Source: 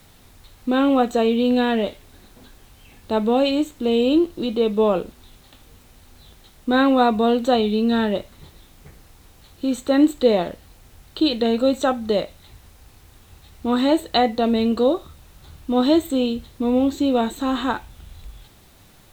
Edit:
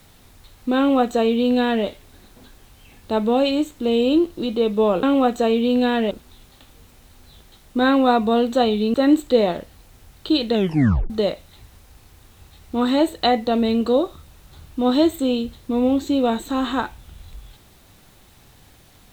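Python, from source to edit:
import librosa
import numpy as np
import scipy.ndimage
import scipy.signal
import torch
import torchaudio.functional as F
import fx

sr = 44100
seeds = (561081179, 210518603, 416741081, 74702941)

y = fx.edit(x, sr, fx.duplicate(start_s=0.78, length_s=1.08, to_s=5.03),
    fx.cut(start_s=7.86, length_s=1.99),
    fx.tape_stop(start_s=11.45, length_s=0.56), tone=tone)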